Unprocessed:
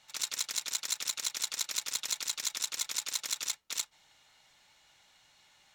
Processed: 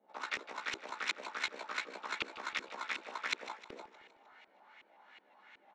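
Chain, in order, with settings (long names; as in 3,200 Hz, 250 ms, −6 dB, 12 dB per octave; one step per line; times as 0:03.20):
Butterworth high-pass 200 Hz 48 dB per octave
double-tracking delay 15 ms −4.5 dB
auto-filter low-pass saw up 2.7 Hz 370–2,500 Hz
feedback echo with a swinging delay time 155 ms, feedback 55%, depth 105 cents, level −15 dB
level +3.5 dB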